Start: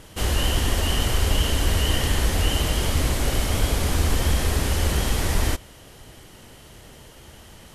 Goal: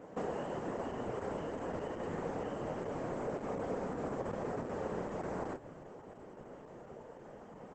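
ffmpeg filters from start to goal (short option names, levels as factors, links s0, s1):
-filter_complex "[0:a]asplit=4[s0][s1][s2][s3];[s1]adelay=143,afreqshift=40,volume=0.0631[s4];[s2]adelay=286,afreqshift=80,volume=0.0285[s5];[s3]adelay=429,afreqshift=120,volume=0.0127[s6];[s0][s4][s5][s6]amix=inputs=4:normalize=0,aeval=exprs='0.447*(cos(1*acos(clip(val(0)/0.447,-1,1)))-cos(1*PI/2))+0.00501*(cos(7*acos(clip(val(0)/0.447,-1,1)))-cos(7*PI/2))':c=same,highpass=f=150:w=0.5412,highpass=f=150:w=1.3066,acompressor=threshold=0.0251:ratio=20,firequalizer=gain_entry='entry(330,0);entry(470,6);entry(3500,-27);entry(13000,-7)':delay=0.05:min_phase=1,flanger=delay=3.9:depth=7.8:regen=-60:speed=0.27:shape=sinusoidal,volume=1.41" -ar 48000 -c:a libopus -b:a 10k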